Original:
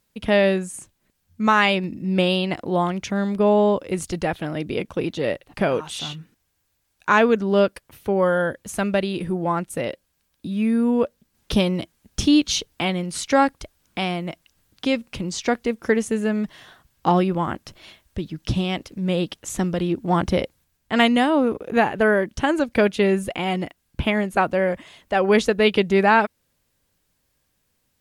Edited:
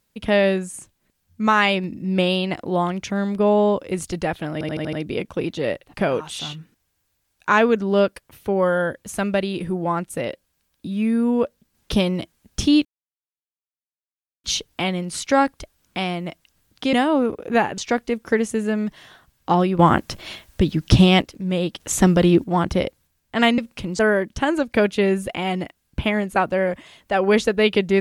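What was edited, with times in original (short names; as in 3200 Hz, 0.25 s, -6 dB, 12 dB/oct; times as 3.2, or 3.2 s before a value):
4.53 stutter 0.08 s, 6 plays
12.45 insert silence 1.59 s
14.94–15.35 swap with 21.15–22
17.36–18.79 gain +10 dB
19.37–20.01 gain +8 dB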